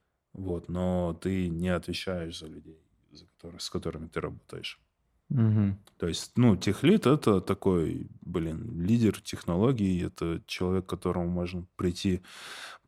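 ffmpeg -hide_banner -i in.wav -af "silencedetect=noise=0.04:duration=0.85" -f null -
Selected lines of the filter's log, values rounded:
silence_start: 2.23
silence_end: 3.62 | silence_duration: 1.38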